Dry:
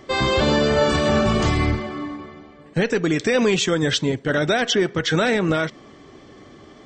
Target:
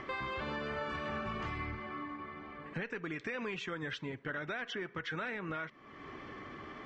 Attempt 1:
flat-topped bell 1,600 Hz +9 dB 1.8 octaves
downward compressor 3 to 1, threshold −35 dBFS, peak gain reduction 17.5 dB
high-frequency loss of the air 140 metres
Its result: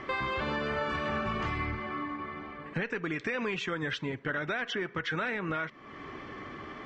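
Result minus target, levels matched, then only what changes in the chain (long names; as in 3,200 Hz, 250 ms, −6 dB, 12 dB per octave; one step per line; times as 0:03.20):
downward compressor: peak gain reduction −6.5 dB
change: downward compressor 3 to 1, threshold −44.5 dBFS, peak gain reduction 23.5 dB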